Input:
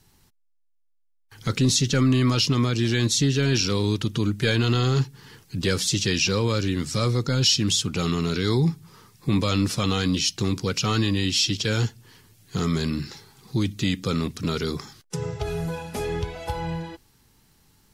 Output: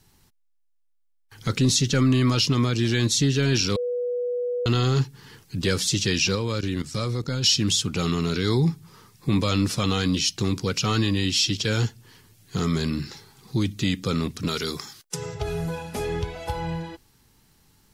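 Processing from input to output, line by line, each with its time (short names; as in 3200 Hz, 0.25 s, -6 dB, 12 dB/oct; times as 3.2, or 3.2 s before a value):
3.76–4.66 bleep 489 Hz -23.5 dBFS
6.35–7.44 level quantiser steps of 13 dB
14.48–15.35 tilt +2 dB/oct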